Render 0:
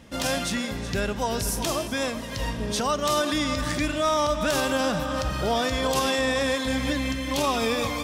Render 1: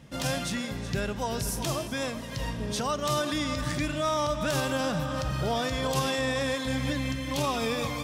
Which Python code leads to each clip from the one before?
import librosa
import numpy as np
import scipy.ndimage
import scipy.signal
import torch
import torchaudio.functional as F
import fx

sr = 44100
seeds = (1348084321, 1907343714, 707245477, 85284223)

y = fx.peak_eq(x, sr, hz=140.0, db=14.5, octaves=0.29)
y = y * 10.0 ** (-4.5 / 20.0)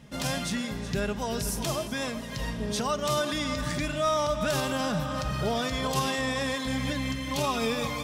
y = x + 0.34 * np.pad(x, (int(4.8 * sr / 1000.0), 0))[:len(x)]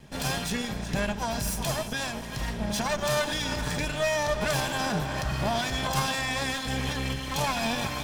y = fx.lower_of_two(x, sr, delay_ms=1.2)
y = y * 10.0 ** (2.0 / 20.0)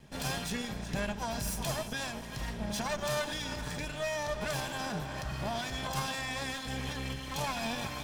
y = fx.rider(x, sr, range_db=10, speed_s=2.0)
y = y * 10.0 ** (-7.0 / 20.0)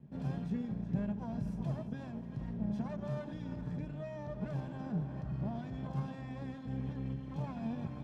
y = fx.bandpass_q(x, sr, hz=170.0, q=1.3)
y = y * 10.0 ** (4.0 / 20.0)